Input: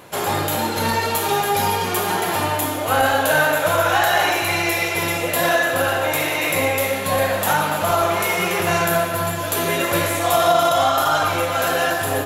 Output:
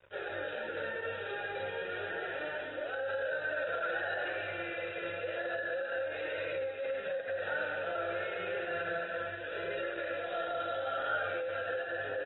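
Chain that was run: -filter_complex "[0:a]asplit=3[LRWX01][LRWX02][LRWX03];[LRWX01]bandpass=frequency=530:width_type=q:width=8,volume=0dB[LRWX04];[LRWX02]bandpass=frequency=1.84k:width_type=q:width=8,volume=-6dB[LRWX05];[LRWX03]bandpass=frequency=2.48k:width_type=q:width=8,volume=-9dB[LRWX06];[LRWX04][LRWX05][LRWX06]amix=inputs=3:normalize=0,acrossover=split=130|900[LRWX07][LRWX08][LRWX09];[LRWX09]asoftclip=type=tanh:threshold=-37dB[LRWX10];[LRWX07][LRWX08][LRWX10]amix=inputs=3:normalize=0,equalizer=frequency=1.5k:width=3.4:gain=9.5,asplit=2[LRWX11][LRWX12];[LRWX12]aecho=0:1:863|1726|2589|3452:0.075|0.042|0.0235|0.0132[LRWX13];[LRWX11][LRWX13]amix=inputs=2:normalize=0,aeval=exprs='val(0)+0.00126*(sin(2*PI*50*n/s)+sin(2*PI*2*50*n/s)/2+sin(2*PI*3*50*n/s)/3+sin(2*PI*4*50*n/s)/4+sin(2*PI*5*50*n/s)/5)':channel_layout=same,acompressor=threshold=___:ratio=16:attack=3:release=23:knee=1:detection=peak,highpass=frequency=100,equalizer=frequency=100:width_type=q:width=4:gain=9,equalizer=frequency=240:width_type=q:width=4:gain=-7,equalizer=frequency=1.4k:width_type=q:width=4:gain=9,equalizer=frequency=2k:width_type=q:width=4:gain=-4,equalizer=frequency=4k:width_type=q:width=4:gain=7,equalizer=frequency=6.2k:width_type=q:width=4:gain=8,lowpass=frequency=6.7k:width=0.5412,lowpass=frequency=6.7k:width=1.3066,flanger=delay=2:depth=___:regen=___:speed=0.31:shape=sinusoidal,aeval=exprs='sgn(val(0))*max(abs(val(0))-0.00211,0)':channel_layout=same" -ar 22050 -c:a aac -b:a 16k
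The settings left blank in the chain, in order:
-30dB, 9.4, -32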